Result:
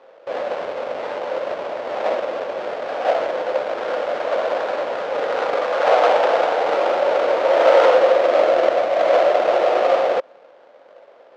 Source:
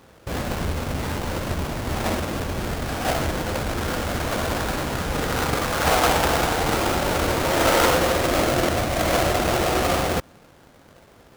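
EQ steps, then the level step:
high-pass with resonance 550 Hz, resonance Q 4.2
low-pass filter 3,800 Hz 12 dB per octave
high-frequency loss of the air 63 metres
−1.0 dB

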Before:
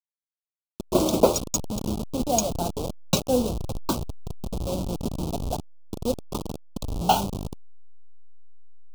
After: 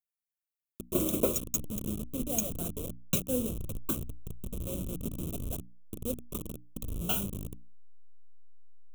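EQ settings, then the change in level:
high-shelf EQ 6,600 Hz +10.5 dB
mains-hum notches 60/120/180/240/300 Hz
phaser with its sweep stopped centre 2,000 Hz, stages 4
−5.5 dB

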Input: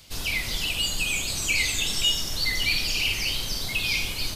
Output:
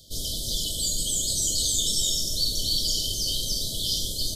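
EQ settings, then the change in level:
dynamic equaliser 8,000 Hz, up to +6 dB, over −42 dBFS, Q 0.96
linear-phase brick-wall band-stop 680–3,000 Hz
0.0 dB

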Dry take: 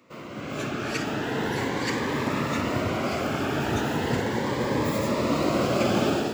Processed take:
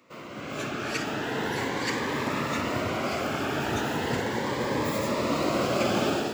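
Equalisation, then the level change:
low-shelf EQ 380 Hz −5 dB
0.0 dB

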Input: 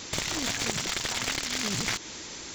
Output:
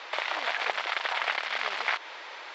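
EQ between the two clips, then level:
high-pass filter 630 Hz 24 dB per octave
high-frequency loss of the air 370 metres
high-shelf EQ 5,600 Hz −9.5 dB
+9.0 dB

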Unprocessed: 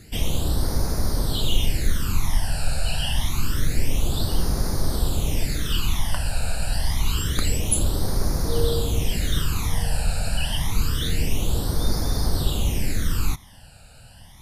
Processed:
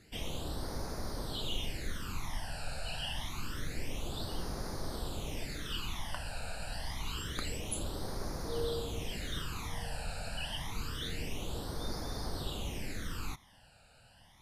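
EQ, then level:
low-pass filter 3,700 Hz 6 dB per octave
low-shelf EQ 220 Hz −10.5 dB
−8.0 dB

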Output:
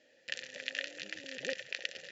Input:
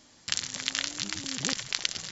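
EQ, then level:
formant filter e
+7.0 dB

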